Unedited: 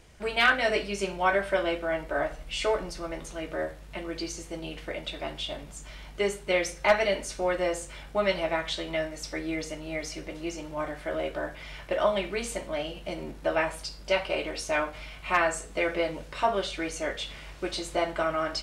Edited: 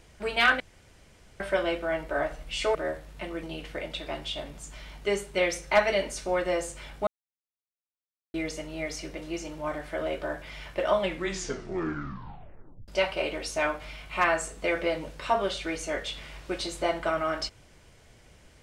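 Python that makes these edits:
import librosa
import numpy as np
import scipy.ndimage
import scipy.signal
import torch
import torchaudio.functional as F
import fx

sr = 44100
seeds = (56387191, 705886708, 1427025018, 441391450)

y = fx.edit(x, sr, fx.room_tone_fill(start_s=0.6, length_s=0.8),
    fx.cut(start_s=2.75, length_s=0.74),
    fx.cut(start_s=4.17, length_s=0.39),
    fx.silence(start_s=8.2, length_s=1.27),
    fx.tape_stop(start_s=12.12, length_s=1.89), tone=tone)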